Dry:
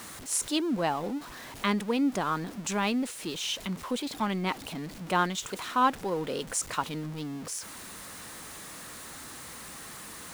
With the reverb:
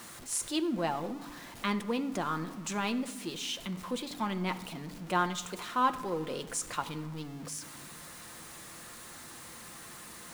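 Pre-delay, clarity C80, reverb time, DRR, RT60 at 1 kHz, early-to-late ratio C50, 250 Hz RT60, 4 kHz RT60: 6 ms, 16.0 dB, 1.3 s, 7.5 dB, 1.3 s, 14.0 dB, 2.1 s, 0.60 s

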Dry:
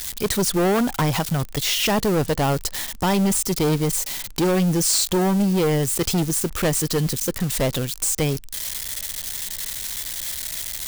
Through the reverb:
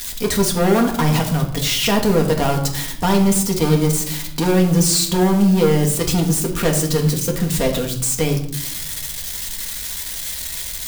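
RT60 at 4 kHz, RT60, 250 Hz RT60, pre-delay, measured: 0.50 s, 0.65 s, 1.3 s, 4 ms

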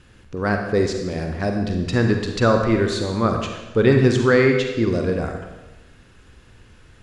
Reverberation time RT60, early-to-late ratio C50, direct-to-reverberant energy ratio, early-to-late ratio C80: 1.1 s, 4.5 dB, 3.5 dB, 6.5 dB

